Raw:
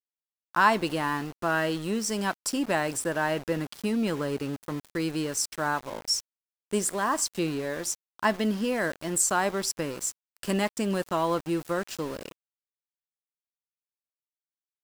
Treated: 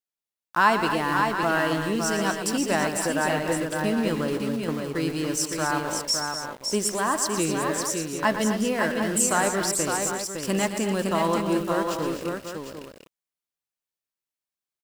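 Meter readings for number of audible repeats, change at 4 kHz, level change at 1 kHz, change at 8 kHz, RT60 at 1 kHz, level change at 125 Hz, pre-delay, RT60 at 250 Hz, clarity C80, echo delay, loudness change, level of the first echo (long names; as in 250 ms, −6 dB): 5, +3.5 dB, +3.5 dB, +3.5 dB, no reverb audible, +3.5 dB, no reverb audible, no reverb audible, no reverb audible, 116 ms, +3.5 dB, −10.0 dB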